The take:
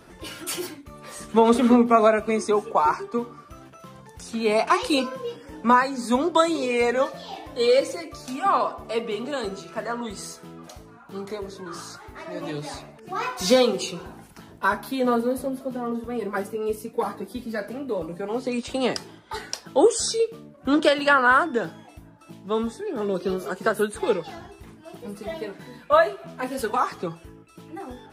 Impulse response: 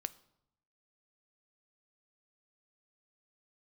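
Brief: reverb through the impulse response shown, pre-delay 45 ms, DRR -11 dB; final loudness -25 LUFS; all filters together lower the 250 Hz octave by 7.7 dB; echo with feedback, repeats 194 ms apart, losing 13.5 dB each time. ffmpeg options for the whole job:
-filter_complex "[0:a]equalizer=f=250:t=o:g=-9,aecho=1:1:194|388:0.211|0.0444,asplit=2[s0][s1];[1:a]atrim=start_sample=2205,adelay=45[s2];[s1][s2]afir=irnorm=-1:irlink=0,volume=4.22[s3];[s0][s3]amix=inputs=2:normalize=0,volume=0.282"

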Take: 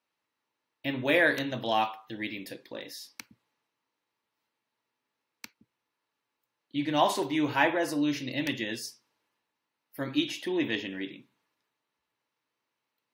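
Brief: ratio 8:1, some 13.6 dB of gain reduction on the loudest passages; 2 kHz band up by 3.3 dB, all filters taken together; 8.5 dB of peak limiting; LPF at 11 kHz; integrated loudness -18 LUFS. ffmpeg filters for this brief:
-af "lowpass=11000,equalizer=f=2000:t=o:g=4,acompressor=threshold=0.0282:ratio=8,volume=11.2,alimiter=limit=0.447:level=0:latency=1"

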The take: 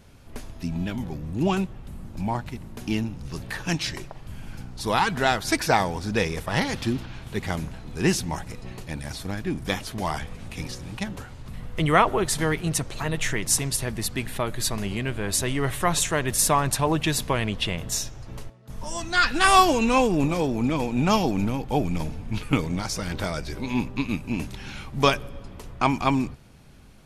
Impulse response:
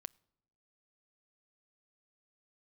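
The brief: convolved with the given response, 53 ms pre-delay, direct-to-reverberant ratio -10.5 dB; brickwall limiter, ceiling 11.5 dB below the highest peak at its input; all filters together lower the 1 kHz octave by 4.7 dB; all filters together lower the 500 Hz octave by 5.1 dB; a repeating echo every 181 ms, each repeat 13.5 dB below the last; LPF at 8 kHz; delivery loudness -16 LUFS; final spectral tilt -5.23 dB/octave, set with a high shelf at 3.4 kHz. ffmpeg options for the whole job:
-filter_complex "[0:a]lowpass=8000,equalizer=f=500:t=o:g=-5.5,equalizer=f=1000:t=o:g=-3.5,highshelf=f=3400:g=-8.5,alimiter=limit=0.1:level=0:latency=1,aecho=1:1:181|362:0.211|0.0444,asplit=2[s0][s1];[1:a]atrim=start_sample=2205,adelay=53[s2];[s1][s2]afir=irnorm=-1:irlink=0,volume=6.31[s3];[s0][s3]amix=inputs=2:normalize=0,volume=1.68"

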